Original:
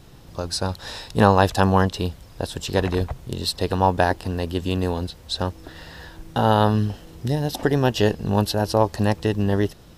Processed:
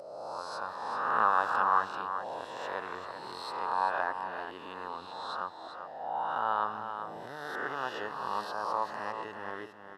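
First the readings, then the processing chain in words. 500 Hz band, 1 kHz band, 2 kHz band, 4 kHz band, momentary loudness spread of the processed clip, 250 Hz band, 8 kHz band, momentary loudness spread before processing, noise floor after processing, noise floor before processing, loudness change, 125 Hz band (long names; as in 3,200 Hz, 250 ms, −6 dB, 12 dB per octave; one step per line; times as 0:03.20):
−16.5 dB, −5.5 dB, −6.0 dB, −17.0 dB, 14 LU, −25.5 dB, below −20 dB, 14 LU, −46 dBFS, −46 dBFS, −11.5 dB, −34.0 dB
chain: peak hold with a rise ahead of every peak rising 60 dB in 1.35 s
in parallel at −2.5 dB: downward compressor, threshold −23 dBFS, peak gain reduction 15 dB
on the sum: high-pass filter 96 Hz
envelope filter 550–1,200 Hz, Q 4.1, up, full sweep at −15.5 dBFS
upward compression, threshold −42 dBFS
high-shelf EQ 7,900 Hz +6 dB
on a send: single-tap delay 390 ms −8.5 dB
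on the sum: level −5 dB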